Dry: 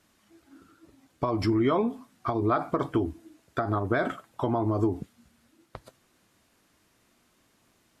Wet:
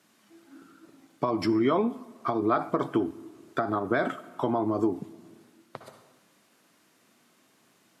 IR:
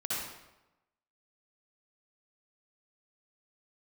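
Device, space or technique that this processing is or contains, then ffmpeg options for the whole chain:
compressed reverb return: -filter_complex "[0:a]highpass=f=140:w=0.5412,highpass=f=140:w=1.3066,asplit=2[s0][s1];[1:a]atrim=start_sample=2205[s2];[s1][s2]afir=irnorm=-1:irlink=0,acompressor=threshold=0.0178:ratio=6,volume=0.376[s3];[s0][s3]amix=inputs=2:normalize=0"

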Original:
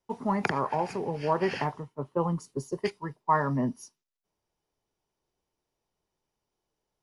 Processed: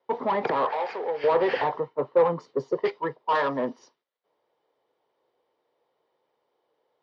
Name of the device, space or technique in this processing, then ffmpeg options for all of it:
overdrive pedal into a guitar cabinet: -filter_complex "[0:a]asplit=2[s0][s1];[s1]highpass=f=720:p=1,volume=20,asoftclip=type=tanh:threshold=0.335[s2];[s0][s2]amix=inputs=2:normalize=0,lowpass=f=2600:p=1,volume=0.501,highpass=97,equalizer=f=97:t=q:w=4:g=-8,equalizer=f=190:t=q:w=4:g=-9,equalizer=f=500:t=q:w=4:g=10,equalizer=f=1500:t=q:w=4:g=-4,equalizer=f=2600:t=q:w=4:g=-8,lowpass=f=3900:w=0.5412,lowpass=f=3900:w=1.3066,asettb=1/sr,asplit=3[s3][s4][s5];[s3]atrim=end=0.714[s6];[s4]atrim=start=0.71:end=1.24,asetpts=PTS-STARTPTS,afade=t=in:d=0.004:c=qsin,afade=t=out:st=0.526:d=0.004:c=qsin,highpass=f=1100:p=1[s7];[s5]atrim=start=1.236[s8];[s6][s7]acrossfade=d=0.004:c1=hsin:c2=qsin[s9];[s9][s8]acrossfade=d=0.004:c1=qsin:c2=hsin,asettb=1/sr,asplit=3[s10][s11][s12];[s10]atrim=end=1.754[s13];[s11]atrim=start=1.75:end=2.43,asetpts=PTS-STARTPTS,afade=t=in:d=0.004:c=qsin,afade=t=out:st=0.676:d=0.004:c=qsin,bandreject=f=3300:w=11[s14];[s12]atrim=start=2.426[s15];[s13][s14]acrossfade=d=0.004:c1=hsin:c2=qsin[s16];[s16][s15]acrossfade=d=0.004:c1=qsin:c2=hsin,asettb=1/sr,asplit=3[s17][s18][s19];[s17]atrim=end=3.354[s20];[s18]atrim=start=3.35:end=3.79,asetpts=PTS-STARTPTS,afade=t=in:d=0.004:c=qsin,afade=t=out:st=0.436:d=0.004:c=qsin,aemphasis=mode=production:type=bsi[s21];[s19]atrim=start=3.786[s22];[s20][s21]acrossfade=d=0.004:c1=hsin:c2=qsin[s23];[s23][s22]acrossfade=d=0.004:c1=qsin:c2=hsin,lowpass=9500,volume=0.501"

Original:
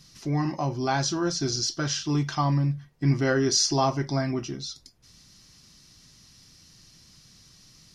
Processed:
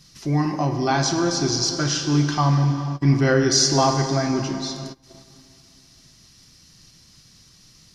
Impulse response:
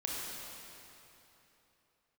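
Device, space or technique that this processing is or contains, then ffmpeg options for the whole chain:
keyed gated reverb: -filter_complex "[0:a]asplit=3[s0][s1][s2];[1:a]atrim=start_sample=2205[s3];[s1][s3]afir=irnorm=-1:irlink=0[s4];[s2]apad=whole_len=350441[s5];[s4][s5]sidechaingate=range=0.0708:threshold=0.00251:ratio=16:detection=peak,volume=0.596[s6];[s0][s6]amix=inputs=2:normalize=0,volume=1.12"

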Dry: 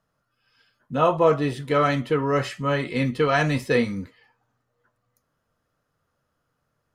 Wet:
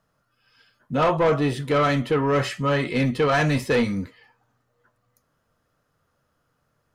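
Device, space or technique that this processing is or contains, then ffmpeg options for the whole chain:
saturation between pre-emphasis and de-emphasis: -af "highshelf=f=4100:g=7.5,asoftclip=type=tanh:threshold=0.119,highshelf=f=4100:g=-7.5,volume=1.58"

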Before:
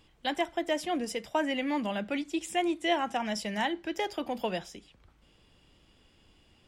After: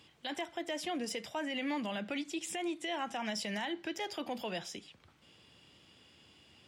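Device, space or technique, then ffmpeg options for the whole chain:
broadcast voice chain: -af "highpass=f=85:w=0.5412,highpass=f=85:w=1.3066,deesser=0.8,acompressor=threshold=0.02:ratio=3,equalizer=f=3900:t=o:w=2.6:g=5,alimiter=level_in=1.68:limit=0.0631:level=0:latency=1:release=23,volume=0.596"

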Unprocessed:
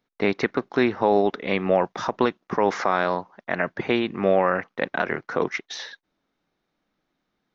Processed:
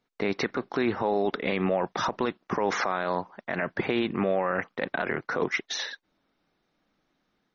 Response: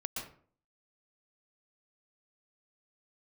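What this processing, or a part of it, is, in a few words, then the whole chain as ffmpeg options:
low-bitrate web radio: -af "dynaudnorm=f=120:g=3:m=1.41,alimiter=limit=0.168:level=0:latency=1:release=38" -ar 48000 -c:a libmp3lame -b:a 32k

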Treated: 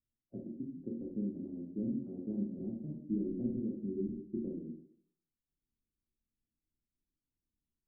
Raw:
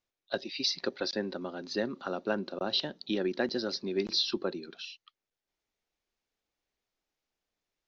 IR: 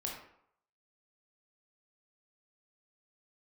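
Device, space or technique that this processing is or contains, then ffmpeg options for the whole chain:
next room: -filter_complex "[0:a]lowpass=f=260:w=0.5412,lowpass=f=260:w=1.3066[s0];[1:a]atrim=start_sample=2205[s1];[s0][s1]afir=irnorm=-1:irlink=0,asettb=1/sr,asplit=3[s2][s3][s4];[s2]atrim=end=3.124[s5];[s3]atrim=start=3.12:end=3.6,asetpts=PTS-STARTPTS,afade=t=in:d=0.004:c=qsin,afade=t=out:st=0.476:d=0.004:c=qsin,asubboost=boost=12:cutoff=170[s6];[s4]atrim=start=3.596[s7];[s5][s6]acrossfade=d=0.004:c1=hsin:c2=qsin[s8];[s8][s7]acrossfade=d=0.004:c1=qsin:c2=hsin,volume=1.5"

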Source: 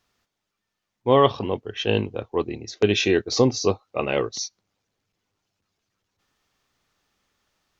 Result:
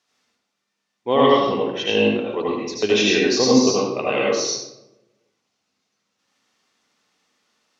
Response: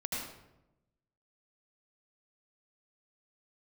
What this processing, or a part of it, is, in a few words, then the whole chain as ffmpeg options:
supermarket ceiling speaker: -filter_complex "[0:a]highpass=220,lowpass=6600[s0];[1:a]atrim=start_sample=2205[s1];[s0][s1]afir=irnorm=-1:irlink=0,aemphasis=mode=production:type=50kf"

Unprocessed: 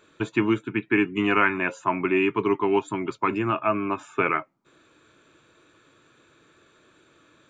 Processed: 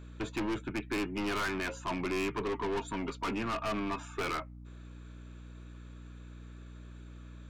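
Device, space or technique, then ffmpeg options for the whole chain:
valve amplifier with mains hum: -filter_complex "[0:a]asettb=1/sr,asplit=3[s0][s1][s2];[s0]atrim=end=2.424[s3];[s1]atrim=start=2.42:end=4.08,asetpts=PTS-STARTPTS,afade=t=in:d=0.004:c=qsin,afade=t=out:st=1.656:d=0.004:c=qsin,aecho=1:1:4.3:0.48,atrim=end_sample=73206[s4];[s2]atrim=start=4.076[s5];[s3][s4]acrossfade=d=0.004:c1=hsin:c2=qsin[s6];[s6][s5]acrossfade=d=0.004:c1=qsin:c2=hsin,aeval=exprs='(tanh(25.1*val(0)+0.2)-tanh(0.2))/25.1':c=same,aeval=exprs='val(0)+0.00631*(sin(2*PI*60*n/s)+sin(2*PI*2*60*n/s)/2+sin(2*PI*3*60*n/s)/3+sin(2*PI*4*60*n/s)/4+sin(2*PI*5*60*n/s)/5)':c=same,volume=0.75"

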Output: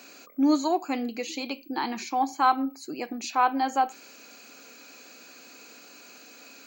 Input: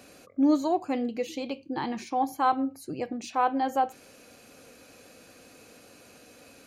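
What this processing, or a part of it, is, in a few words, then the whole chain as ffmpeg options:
old television with a line whistle: -af "highpass=f=220:w=0.5412,highpass=f=220:w=1.3066,equalizer=f=520:t=q:w=4:g=-6,equalizer=f=940:t=q:w=4:g=3,equalizer=f=1400:t=q:w=4:g=5,equalizer=f=2400:t=q:w=4:g=6,equalizer=f=4400:t=q:w=4:g=8,equalizer=f=6900:t=q:w=4:g=9,lowpass=f=7800:w=0.5412,lowpass=f=7800:w=1.3066,aeval=exprs='val(0)+0.00158*sin(2*PI*15734*n/s)':c=same,volume=1.12"

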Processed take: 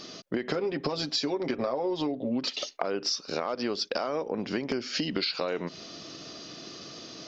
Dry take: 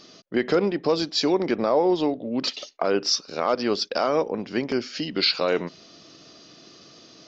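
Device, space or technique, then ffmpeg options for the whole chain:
serial compression, peaks first: -filter_complex "[0:a]asettb=1/sr,asplit=3[s0][s1][s2];[s0]atrim=end=0.524[s3];[s1]atrim=start=0.52:end=2.45,asetpts=PTS-STARTPTS,afade=t=in:d=0.004:c=qsin,afade=t=out:st=1.926:d=0.004:c=qsin,aecho=1:1:7.5:0.67,atrim=end_sample=85113[s4];[s2]atrim=start=2.446[s5];[s3][s4]acrossfade=d=0.004:c1=hsin:c2=qsin[s6];[s6][s5]acrossfade=d=0.004:c1=qsin:c2=hsin,acompressor=threshold=0.0398:ratio=6,acompressor=threshold=0.0224:ratio=2.5,volume=1.88"

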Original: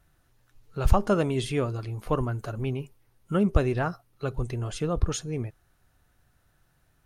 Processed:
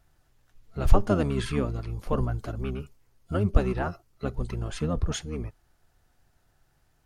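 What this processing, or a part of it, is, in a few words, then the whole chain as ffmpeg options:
octave pedal: -filter_complex "[0:a]asettb=1/sr,asplit=3[s0][s1][s2];[s0]atrim=end=0.874[s3];[s1]atrim=start=0.87:end=2.51,asetpts=PTS-STARTPTS,afade=t=in:d=0.004:c=qsin,afade=t=out:st=1.636:d=0.004:c=qsin,lowshelf=f=62:g=5[s4];[s2]atrim=start=2.506[s5];[s3][s4]acrossfade=d=0.004:c1=hsin:c2=qsin[s6];[s6][s5]acrossfade=d=0.004:c1=qsin:c2=hsin,asplit=2[s7][s8];[s8]asetrate=22050,aresample=44100,atempo=2,volume=0.891[s9];[s7][s9]amix=inputs=2:normalize=0,volume=0.708"

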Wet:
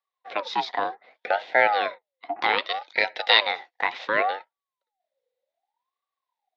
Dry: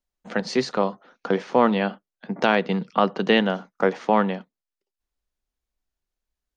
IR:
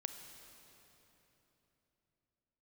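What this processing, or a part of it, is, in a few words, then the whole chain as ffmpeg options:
voice changer toy: -filter_complex "[0:a]asettb=1/sr,asplit=3[s0][s1][s2];[s0]atrim=end=2.584[s3];[s1]atrim=start=2.58:end=4.08,asetpts=PTS-STARTPTS,afade=t=in:d=0.004:c=qsin,afade=t=out:st=1.496:d=0.004:c=qsin,tiltshelf=f=970:g=-9[s4];[s2]atrim=start=4.076[s5];[s3][s4]acrossfade=d=0.004:c1=hsin:c2=qsin[s6];[s6][s5]acrossfade=d=0.004:c1=qsin:c2=hsin,aeval=exprs='val(0)*sin(2*PI*820*n/s+820*0.4/0.66*sin(2*PI*0.66*n/s))':c=same,highpass=440,equalizer=f=510:t=q:w=4:g=8,equalizer=f=760:t=q:w=4:g=10,equalizer=f=1300:t=q:w=4:g=-5,equalizer=f=2000:t=q:w=4:g=8,equalizer=f=3700:t=q:w=4:g=9,lowpass=f=4900:w=0.5412,lowpass=f=4900:w=1.3066,volume=0.75"

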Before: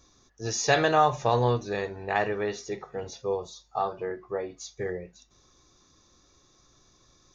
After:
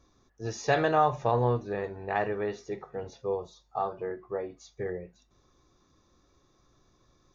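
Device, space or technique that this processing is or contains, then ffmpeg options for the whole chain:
through cloth: -filter_complex "[0:a]highshelf=f=3300:g=-13.5,asettb=1/sr,asplit=3[s0][s1][s2];[s0]atrim=end=1.314[s3];[s1]atrim=start=1.31:end=1.84,asetpts=PTS-STARTPTS,afade=t=in:d=0.004:c=qsin,afade=t=out:st=0.526:d=0.004:c=qsin,acrossover=split=2700[s4][s5];[s5]acompressor=threshold=0.00112:ratio=4:attack=1:release=60[s6];[s4][s6]amix=inputs=2:normalize=0[s7];[s2]atrim=start=1.836[s8];[s3][s7]acrossfade=d=0.004:c1=hsin:c2=qsin[s9];[s9][s8]acrossfade=d=0.004:c1=qsin:c2=hsin,volume=0.841"

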